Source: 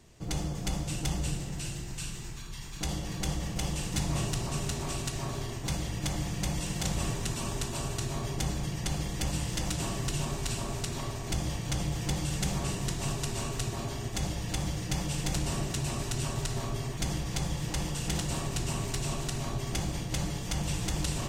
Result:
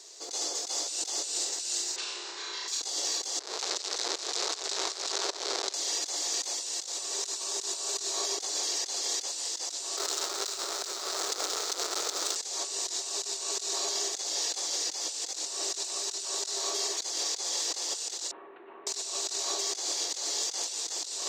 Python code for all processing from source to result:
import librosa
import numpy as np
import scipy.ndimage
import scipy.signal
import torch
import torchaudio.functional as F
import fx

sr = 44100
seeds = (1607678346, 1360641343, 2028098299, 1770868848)

y = fx.chain(x, sr, fx.bandpass_edges(low_hz=130.0, high_hz=2400.0),
    fx.room_flutter(wall_m=5.8, rt60_s=0.81),
    fx.env_flatten(amount_pct=50), at=(1.96, 2.68))
y = fx.chain(y, sr, fx.schmitt(flips_db=-41.5),
    fx.volume_shaper(bpm=157, per_beat=1, depth_db=-20, release_ms=314.0, shape='fast start'),
    fx.lowpass(hz=7300.0, slope=12), at=(3.39, 5.74))
y = fx.chain(y, sr, fx.halfwave_hold(),
    fx.peak_eq(hz=1300.0, db=9.0, octaves=0.26),
    fx.over_compress(threshold_db=-29.0, ratio=-0.5), at=(9.97, 12.36))
y = fx.chain(y, sr, fx.gaussian_blur(sigma=5.9),
    fx.peak_eq(hz=610.0, db=-13.5, octaves=1.9), at=(18.31, 18.87))
y = scipy.signal.sosfilt(scipy.signal.ellip(4, 1.0, 70, 380.0, 'highpass', fs=sr, output='sos'), y)
y = fx.band_shelf(y, sr, hz=5400.0, db=15.5, octaves=1.3)
y = fx.over_compress(y, sr, threshold_db=-34.0, ratio=-1.0)